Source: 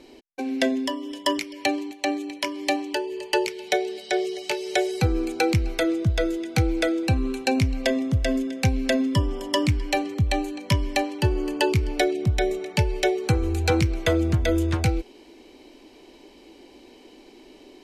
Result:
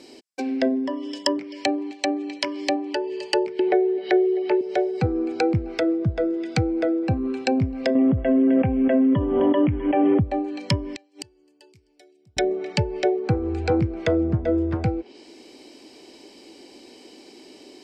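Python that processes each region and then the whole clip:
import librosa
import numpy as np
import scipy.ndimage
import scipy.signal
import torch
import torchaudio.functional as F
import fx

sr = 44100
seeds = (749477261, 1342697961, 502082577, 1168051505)

y = fx.chain(x, sr, fx.cabinet(low_hz=180.0, low_slope=12, high_hz=3800.0, hz=(220.0, 360.0, 560.0, 1900.0), db=(-6, 8, -5, 5)),
    fx.band_squash(depth_pct=100), at=(3.59, 4.61))
y = fx.chain(y, sr, fx.brickwall_lowpass(high_hz=3400.0),
    fx.tilt_shelf(db=-3.0, hz=1400.0),
    fx.env_flatten(amount_pct=100), at=(7.95, 10.2))
y = fx.chain(y, sr, fx.peak_eq(hz=1200.0, db=-5.5, octaves=0.76),
    fx.gate_flip(shuts_db=-23.0, range_db=-34), at=(10.93, 12.37))
y = scipy.signal.sosfilt(scipy.signal.butter(2, 110.0, 'highpass', fs=sr, output='sos'), y)
y = fx.env_lowpass_down(y, sr, base_hz=920.0, full_db=-21.5)
y = fx.graphic_eq_31(y, sr, hz=(1000, 5000, 8000), db=(-3, 10, 9))
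y = y * librosa.db_to_amplitude(2.0)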